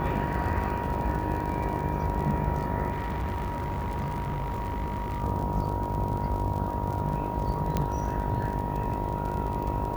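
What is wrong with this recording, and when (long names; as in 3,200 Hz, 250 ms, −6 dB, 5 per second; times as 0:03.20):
mains buzz 50 Hz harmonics 21 −33 dBFS
surface crackle 48 per second −33 dBFS
whistle 950 Hz −34 dBFS
0:02.91–0:05.23: clipping −27 dBFS
0:07.77: click −13 dBFS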